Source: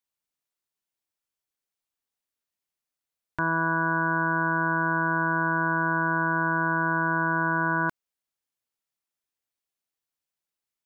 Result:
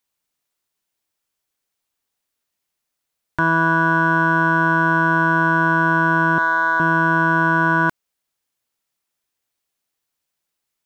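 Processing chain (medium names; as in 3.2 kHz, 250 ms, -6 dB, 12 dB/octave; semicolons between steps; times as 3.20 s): 6.38–6.80 s: high-pass 600 Hz 12 dB/octave; in parallel at -11 dB: hard clipper -25.5 dBFS, distortion -7 dB; on the sum: trim +7 dB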